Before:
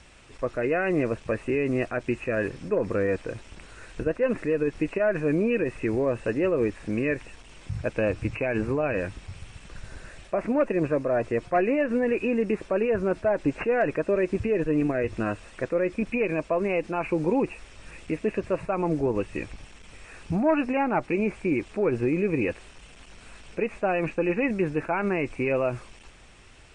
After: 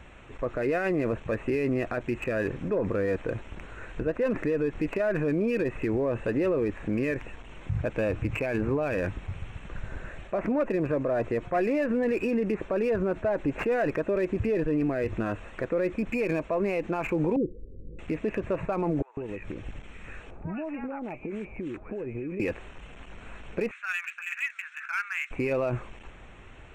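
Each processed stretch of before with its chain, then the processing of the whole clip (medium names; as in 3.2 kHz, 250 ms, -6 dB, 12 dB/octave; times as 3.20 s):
17.36–17.99 s: steep low-pass 520 Hz 96 dB/octave + upward compressor, threshold -43 dBFS
19.02–22.40 s: compression 12:1, threshold -35 dBFS + bands offset in time highs, lows 150 ms, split 950 Hz
23.71–25.31 s: elliptic high-pass 1.4 kHz, stop band 70 dB + upward compressor, threshold -43 dBFS
whole clip: local Wiener filter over 9 samples; peak limiter -24 dBFS; trim +4.5 dB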